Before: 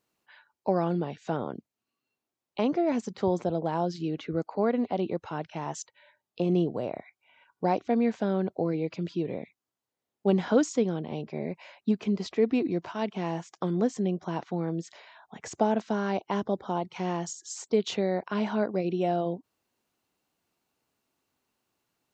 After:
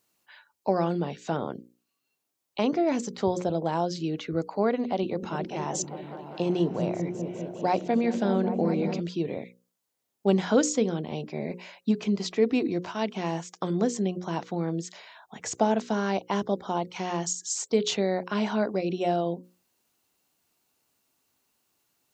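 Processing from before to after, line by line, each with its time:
4.83–9 repeats that get brighter 0.199 s, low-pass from 200 Hz, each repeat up 1 oct, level -3 dB
whole clip: high shelf 4500 Hz +10 dB; notches 60/120/180/240/300/360/420/480/540 Hz; gain +1.5 dB

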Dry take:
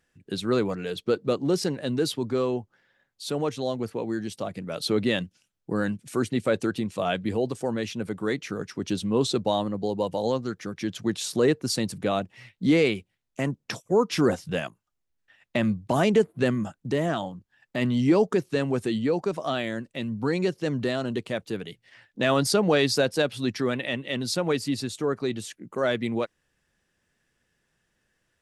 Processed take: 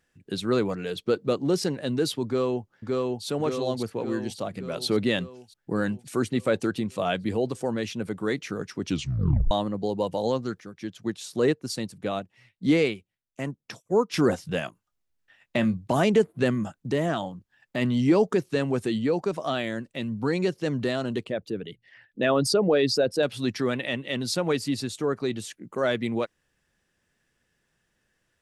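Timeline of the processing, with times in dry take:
2.25–3.25 echo throw 0.57 s, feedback 60%, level -1.5 dB
8.87 tape stop 0.64 s
10.6–14.14 upward expander, over -36 dBFS
14.66–15.77 doubler 22 ms -12 dB
21.24–23.23 formant sharpening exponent 1.5

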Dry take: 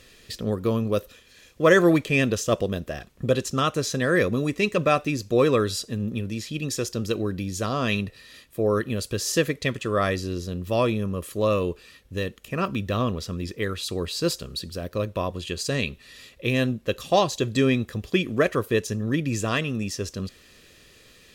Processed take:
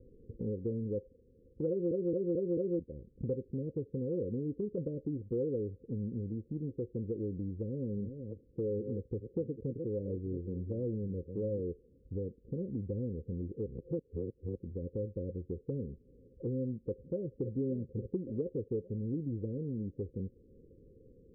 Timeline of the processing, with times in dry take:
1.69 stutter in place 0.22 s, 5 plays
7.56–11.61 reverse delay 0.409 s, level -11 dB
13.66–14.55 reverse
16.79–17.49 echo throw 0.57 s, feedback 45%, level -9 dB
whole clip: Chebyshev low-pass 530 Hz, order 8; compressor 2.5:1, threshold -38 dBFS

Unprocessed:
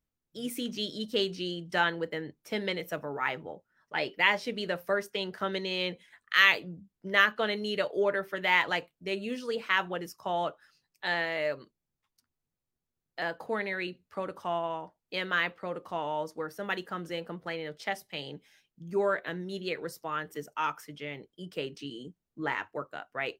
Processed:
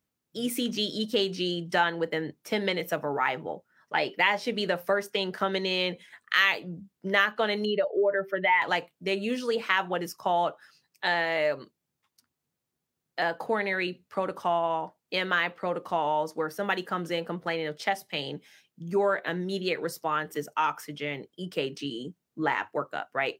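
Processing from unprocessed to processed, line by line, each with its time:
7.65–8.62 spectral contrast raised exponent 1.7
whole clip: HPF 110 Hz; dynamic EQ 810 Hz, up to +5 dB, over -44 dBFS, Q 2.8; compressor 2:1, threshold -31 dBFS; gain +6.5 dB

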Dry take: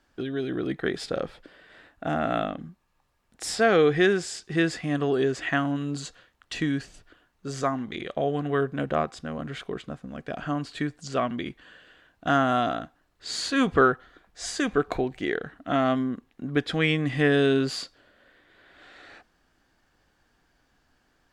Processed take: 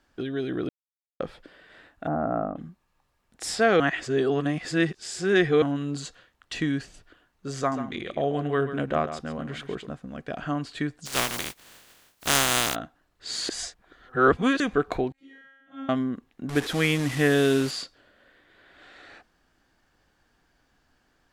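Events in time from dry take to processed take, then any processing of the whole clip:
0.69–1.2 mute
2.07–2.56 LPF 1200 Hz 24 dB/oct
3.8–5.62 reverse
7.58–9.87 echo 0.137 s -11 dB
11.05–12.74 spectral contrast lowered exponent 0.21
13.49–14.6 reverse
15.12–15.89 resonator 270 Hz, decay 1.2 s, mix 100%
16.49–17.71 delta modulation 64 kbps, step -29 dBFS

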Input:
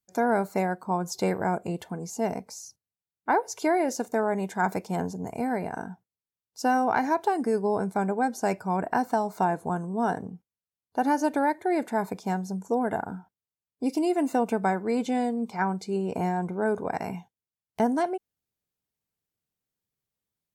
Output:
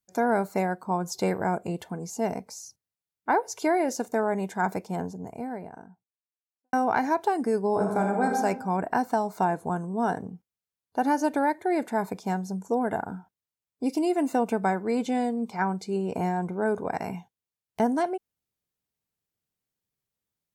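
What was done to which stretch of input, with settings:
4.25–6.73 studio fade out
7.69–8.36 reverb throw, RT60 0.97 s, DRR 1 dB

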